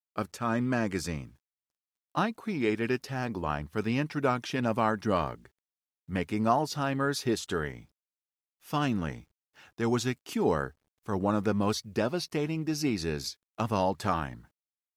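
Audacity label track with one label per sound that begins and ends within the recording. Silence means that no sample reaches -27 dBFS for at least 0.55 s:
2.170000	5.330000	sound
6.130000	7.700000	sound
8.730000	9.110000	sound
9.800000	14.280000	sound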